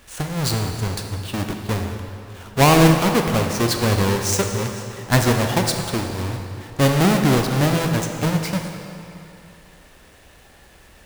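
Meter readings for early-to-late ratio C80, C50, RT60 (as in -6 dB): 5.5 dB, 4.5 dB, 2.8 s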